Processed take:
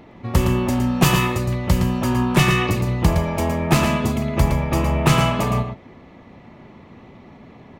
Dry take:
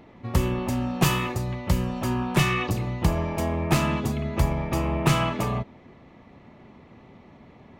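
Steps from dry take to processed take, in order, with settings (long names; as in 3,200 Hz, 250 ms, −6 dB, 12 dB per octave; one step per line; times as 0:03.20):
single-tap delay 114 ms −7 dB
level +5 dB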